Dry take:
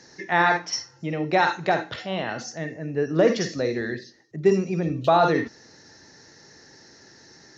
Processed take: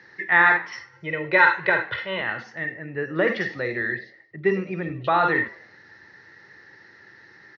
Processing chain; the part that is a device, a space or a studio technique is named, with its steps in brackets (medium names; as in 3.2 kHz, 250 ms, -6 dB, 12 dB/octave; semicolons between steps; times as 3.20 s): 0.93–2.21 s: comb 2 ms, depth 87%; frequency-shifting delay pedal into a guitar cabinet (frequency-shifting echo 100 ms, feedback 38%, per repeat +97 Hz, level -22 dB; cabinet simulation 87–3500 Hz, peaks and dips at 160 Hz -6 dB, 260 Hz -10 dB, 450 Hz -4 dB, 670 Hz -7 dB, 1.3 kHz +4 dB, 1.9 kHz +10 dB)